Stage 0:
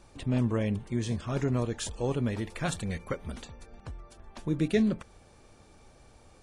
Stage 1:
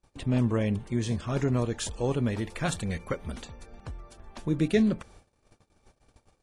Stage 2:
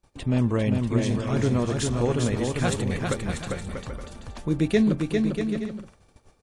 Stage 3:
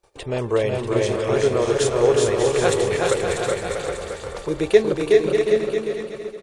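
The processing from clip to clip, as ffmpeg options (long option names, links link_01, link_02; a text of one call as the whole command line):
ffmpeg -i in.wav -af "agate=range=-29dB:threshold=-53dB:ratio=16:detection=peak,volume=2dB" out.wav
ffmpeg -i in.wav -af "aecho=1:1:400|640|784|870.4|922.2:0.631|0.398|0.251|0.158|0.1,volume=2.5dB" out.wav
ffmpeg -i in.wav -af "lowshelf=frequency=320:width_type=q:width=3:gain=-8.5,aecho=1:1:370|592|725.2|805.1|853.1:0.631|0.398|0.251|0.158|0.1,volume=4dB" out.wav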